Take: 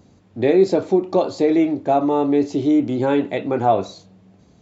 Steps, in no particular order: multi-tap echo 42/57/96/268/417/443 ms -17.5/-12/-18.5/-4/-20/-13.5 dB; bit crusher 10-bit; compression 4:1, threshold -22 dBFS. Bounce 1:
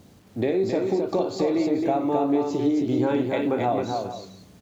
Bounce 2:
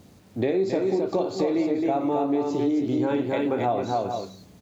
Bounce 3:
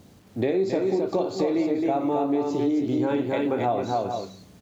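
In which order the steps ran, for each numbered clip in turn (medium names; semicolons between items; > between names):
bit crusher > compression > multi-tap echo; multi-tap echo > bit crusher > compression; bit crusher > multi-tap echo > compression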